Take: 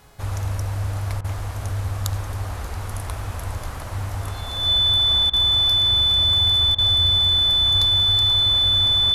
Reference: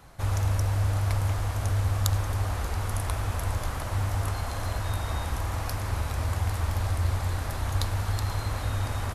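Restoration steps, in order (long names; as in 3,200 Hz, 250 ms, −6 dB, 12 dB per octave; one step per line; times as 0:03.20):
hum removal 420.3 Hz, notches 39
notch filter 3,500 Hz, Q 30
repair the gap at 0:01.21/0:05.30/0:06.75, 32 ms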